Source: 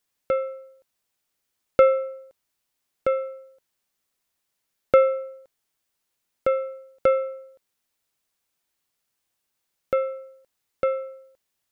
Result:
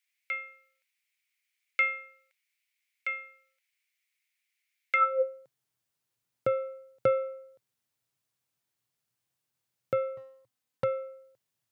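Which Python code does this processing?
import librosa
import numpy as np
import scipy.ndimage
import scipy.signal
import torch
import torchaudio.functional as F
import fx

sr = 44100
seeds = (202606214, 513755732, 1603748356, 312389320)

y = fx.lower_of_two(x, sr, delay_ms=3.9, at=(10.17, 10.84))
y = fx.filter_sweep_highpass(y, sr, from_hz=2200.0, to_hz=120.0, start_s=4.93, end_s=5.49, q=6.3)
y = F.gain(torch.from_numpy(y), -6.0).numpy()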